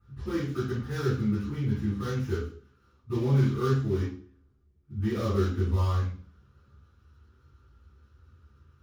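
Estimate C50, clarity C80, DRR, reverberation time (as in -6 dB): 1.5 dB, 7.5 dB, -15.0 dB, 0.45 s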